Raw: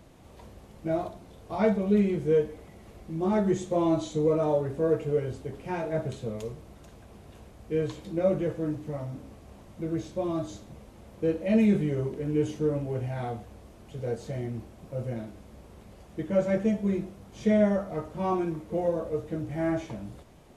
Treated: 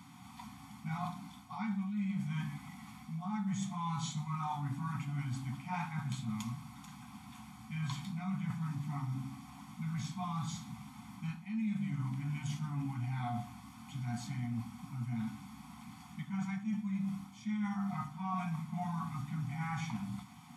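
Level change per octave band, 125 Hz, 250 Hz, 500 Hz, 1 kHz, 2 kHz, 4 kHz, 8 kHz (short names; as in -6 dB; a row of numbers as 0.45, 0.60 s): -3.5 dB, -9.0 dB, under -30 dB, -4.5 dB, -5.0 dB, -1.5 dB, -0.5 dB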